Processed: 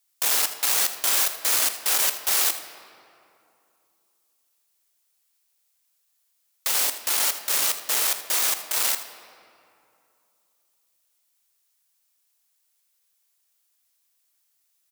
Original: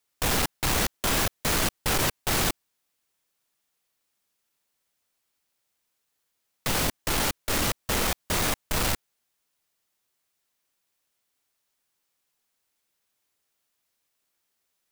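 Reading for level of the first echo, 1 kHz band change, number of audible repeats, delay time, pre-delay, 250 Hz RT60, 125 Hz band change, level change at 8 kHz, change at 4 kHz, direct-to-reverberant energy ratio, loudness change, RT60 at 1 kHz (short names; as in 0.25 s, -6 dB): -14.5 dB, -2.5 dB, 1, 80 ms, 22 ms, 2.9 s, under -25 dB, +6.5 dB, +3.0 dB, 8.5 dB, +4.5 dB, 2.6 s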